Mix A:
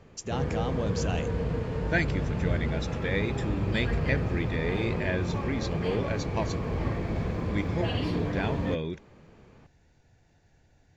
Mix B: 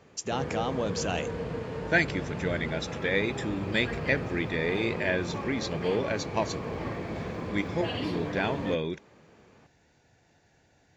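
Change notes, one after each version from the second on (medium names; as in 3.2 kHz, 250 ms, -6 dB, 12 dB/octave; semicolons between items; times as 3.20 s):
speech +4.0 dB; master: add high-pass 250 Hz 6 dB/octave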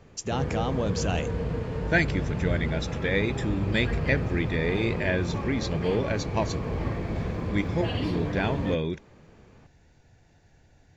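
master: remove high-pass 250 Hz 6 dB/octave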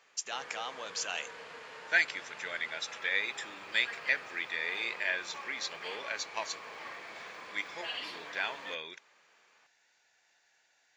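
master: add high-pass 1.3 kHz 12 dB/octave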